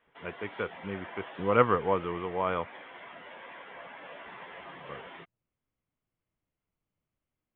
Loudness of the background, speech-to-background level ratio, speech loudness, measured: -46.0 LUFS, 15.5 dB, -30.5 LUFS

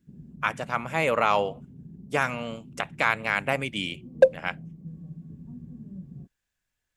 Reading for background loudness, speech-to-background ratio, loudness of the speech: -44.5 LUFS, 18.0 dB, -26.5 LUFS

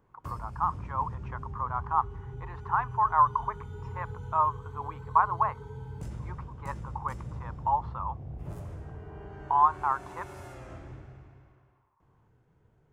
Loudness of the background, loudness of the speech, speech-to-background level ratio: -42.0 LUFS, -29.0 LUFS, 13.0 dB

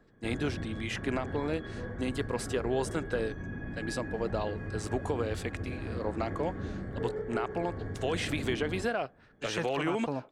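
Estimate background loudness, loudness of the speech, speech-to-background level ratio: -39.0 LUFS, -34.5 LUFS, 4.5 dB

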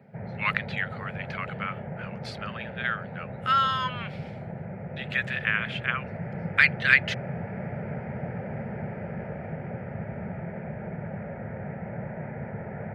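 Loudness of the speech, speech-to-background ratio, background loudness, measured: -26.5 LUFS, 10.0 dB, -36.5 LUFS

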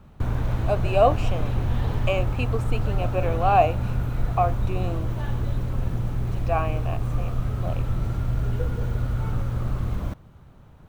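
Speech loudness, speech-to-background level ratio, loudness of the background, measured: -26.0 LUFS, 1.5 dB, -27.5 LUFS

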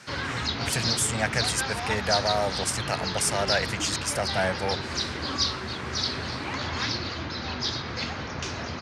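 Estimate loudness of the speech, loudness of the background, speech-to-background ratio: -28.0 LUFS, -29.0 LUFS, 1.0 dB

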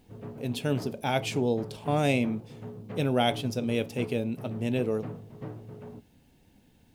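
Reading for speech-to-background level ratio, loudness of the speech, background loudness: 13.0 dB, -29.5 LUFS, -42.5 LUFS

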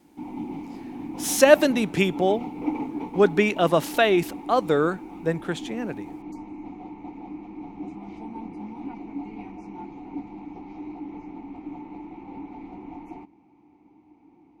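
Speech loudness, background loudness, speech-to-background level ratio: -22.0 LUFS, -37.0 LUFS, 15.0 dB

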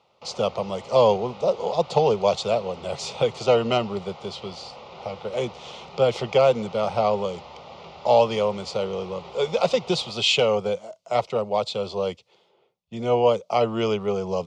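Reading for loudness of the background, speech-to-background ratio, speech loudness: -42.5 LUFS, 19.0 dB, -23.5 LUFS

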